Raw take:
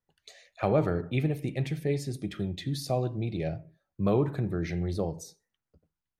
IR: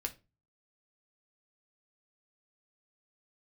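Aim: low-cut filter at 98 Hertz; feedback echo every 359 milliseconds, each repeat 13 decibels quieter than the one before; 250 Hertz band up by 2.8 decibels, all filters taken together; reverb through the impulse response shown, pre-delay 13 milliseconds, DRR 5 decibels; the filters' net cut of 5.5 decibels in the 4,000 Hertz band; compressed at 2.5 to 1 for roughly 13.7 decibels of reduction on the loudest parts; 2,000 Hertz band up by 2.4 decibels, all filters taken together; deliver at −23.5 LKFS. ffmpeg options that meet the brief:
-filter_complex "[0:a]highpass=98,equalizer=frequency=250:width_type=o:gain=4.5,equalizer=frequency=2000:width_type=o:gain=5,equalizer=frequency=4000:width_type=o:gain=-8,acompressor=threshold=-40dB:ratio=2.5,aecho=1:1:359|718|1077:0.224|0.0493|0.0108,asplit=2[link_01][link_02];[1:a]atrim=start_sample=2205,adelay=13[link_03];[link_02][link_03]afir=irnorm=-1:irlink=0,volume=-5dB[link_04];[link_01][link_04]amix=inputs=2:normalize=0,volume=15.5dB"

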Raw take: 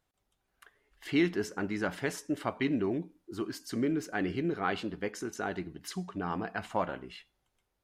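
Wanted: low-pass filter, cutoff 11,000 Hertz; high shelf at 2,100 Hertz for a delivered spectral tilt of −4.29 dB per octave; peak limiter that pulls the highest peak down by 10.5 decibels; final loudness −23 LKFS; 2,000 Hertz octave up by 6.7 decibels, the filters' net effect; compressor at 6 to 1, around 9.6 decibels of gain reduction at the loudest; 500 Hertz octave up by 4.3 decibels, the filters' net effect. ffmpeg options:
ffmpeg -i in.wav -af "lowpass=11000,equalizer=frequency=500:width_type=o:gain=5.5,equalizer=frequency=2000:width_type=o:gain=6,highshelf=frequency=2100:gain=4,acompressor=threshold=-30dB:ratio=6,volume=15.5dB,alimiter=limit=-11dB:level=0:latency=1" out.wav

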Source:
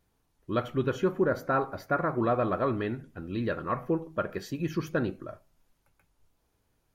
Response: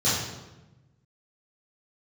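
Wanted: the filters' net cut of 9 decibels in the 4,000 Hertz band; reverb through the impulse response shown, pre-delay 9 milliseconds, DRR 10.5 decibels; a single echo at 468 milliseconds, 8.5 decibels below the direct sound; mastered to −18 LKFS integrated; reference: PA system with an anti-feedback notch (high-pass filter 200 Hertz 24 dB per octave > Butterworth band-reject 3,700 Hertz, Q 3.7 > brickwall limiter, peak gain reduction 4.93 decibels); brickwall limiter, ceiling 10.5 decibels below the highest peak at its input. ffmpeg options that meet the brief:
-filter_complex "[0:a]equalizer=frequency=4000:width_type=o:gain=-9,alimiter=level_in=2dB:limit=-24dB:level=0:latency=1,volume=-2dB,aecho=1:1:468:0.376,asplit=2[link_01][link_02];[1:a]atrim=start_sample=2205,adelay=9[link_03];[link_02][link_03]afir=irnorm=-1:irlink=0,volume=-25dB[link_04];[link_01][link_04]amix=inputs=2:normalize=0,highpass=frequency=200:width=0.5412,highpass=frequency=200:width=1.3066,asuperstop=centerf=3700:order=8:qfactor=3.7,volume=19.5dB,alimiter=limit=-7.5dB:level=0:latency=1"

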